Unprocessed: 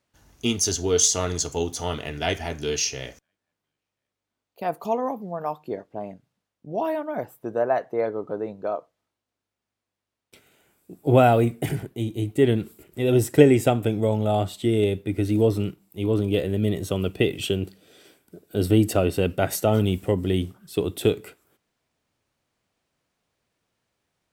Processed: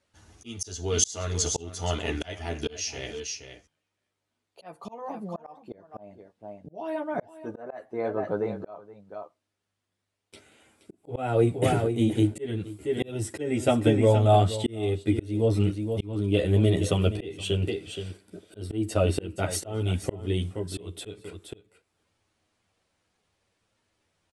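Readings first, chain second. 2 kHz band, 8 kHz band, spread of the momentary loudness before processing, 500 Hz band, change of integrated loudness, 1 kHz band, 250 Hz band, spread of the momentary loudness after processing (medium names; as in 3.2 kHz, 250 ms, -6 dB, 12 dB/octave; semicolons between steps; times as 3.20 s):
-5.0 dB, -5.0 dB, 13 LU, -5.0 dB, -3.5 dB, -4.5 dB, -4.0 dB, 20 LU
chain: chorus voices 4, 0.34 Hz, delay 11 ms, depth 1.9 ms; Chebyshev low-pass 11 kHz, order 6; on a send: delay 473 ms -13 dB; on the sum: slow attack 540 ms; trim +6 dB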